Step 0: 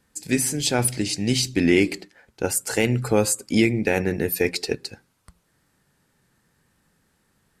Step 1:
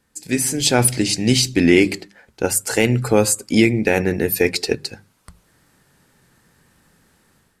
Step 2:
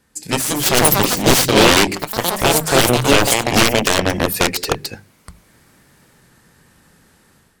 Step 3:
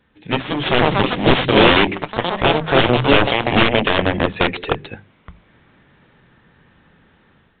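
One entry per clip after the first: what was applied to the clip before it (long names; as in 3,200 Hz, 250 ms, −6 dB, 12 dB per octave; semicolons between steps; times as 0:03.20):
mains-hum notches 50/100/150/200 Hz; automatic gain control gain up to 9 dB
harmonic generator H 7 −13 dB, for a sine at −1 dBFS; delay with pitch and tempo change per echo 248 ms, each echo +4 semitones, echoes 3, each echo −6 dB; sine wavefolder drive 11 dB, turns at 1 dBFS; level −5 dB
A-law companding 64 kbit/s 8,000 Hz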